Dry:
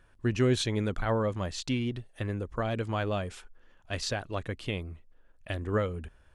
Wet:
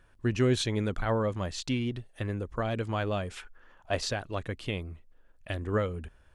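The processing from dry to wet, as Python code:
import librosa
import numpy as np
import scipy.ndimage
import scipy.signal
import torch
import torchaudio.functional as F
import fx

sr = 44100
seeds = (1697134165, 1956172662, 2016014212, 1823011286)

y = fx.peak_eq(x, sr, hz=fx.line((3.35, 2300.0), (4.06, 530.0)), db=10.0, octaves=1.6, at=(3.35, 4.06), fade=0.02)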